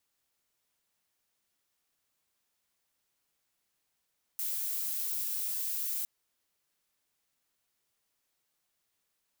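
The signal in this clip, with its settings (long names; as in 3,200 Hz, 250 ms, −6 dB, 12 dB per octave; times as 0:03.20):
noise violet, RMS −34 dBFS 1.66 s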